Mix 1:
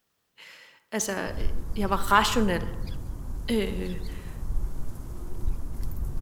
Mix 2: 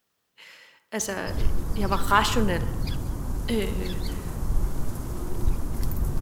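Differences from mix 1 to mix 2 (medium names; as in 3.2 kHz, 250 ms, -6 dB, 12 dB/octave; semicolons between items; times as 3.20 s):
background +9.5 dB; master: add bass shelf 92 Hz -6.5 dB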